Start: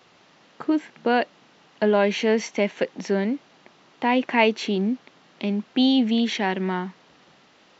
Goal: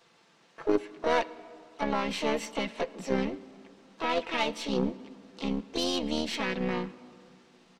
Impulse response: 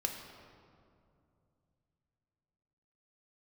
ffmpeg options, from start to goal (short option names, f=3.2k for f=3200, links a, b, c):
-filter_complex "[0:a]aecho=1:1:5.9:0.63,alimiter=limit=-12dB:level=0:latency=1:release=109,asplit=4[a][b][c][d];[b]asetrate=37084,aresample=44100,atempo=1.18921,volume=-16dB[e];[c]asetrate=58866,aresample=44100,atempo=0.749154,volume=-1dB[f];[d]asetrate=88200,aresample=44100,atempo=0.5,volume=-16dB[g];[a][e][f][g]amix=inputs=4:normalize=0,aeval=exprs='0.473*(cos(1*acos(clip(val(0)/0.473,-1,1)))-cos(1*PI/2))+0.075*(cos(3*acos(clip(val(0)/0.473,-1,1)))-cos(3*PI/2))+0.0188*(cos(6*acos(clip(val(0)/0.473,-1,1)))-cos(6*PI/2))':c=same,asplit=2[h][i];[1:a]atrim=start_sample=2205,lowshelf=f=130:g=-8.5[j];[i][j]afir=irnorm=-1:irlink=0,volume=-12.5dB[k];[h][k]amix=inputs=2:normalize=0,volume=-7dB"